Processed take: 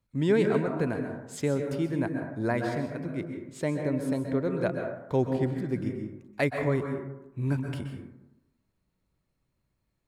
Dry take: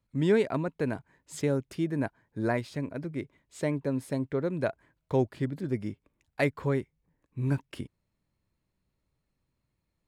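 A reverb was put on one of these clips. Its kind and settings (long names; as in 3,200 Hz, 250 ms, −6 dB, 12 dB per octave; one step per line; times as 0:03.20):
dense smooth reverb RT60 0.94 s, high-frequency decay 0.35×, pre-delay 115 ms, DRR 3.5 dB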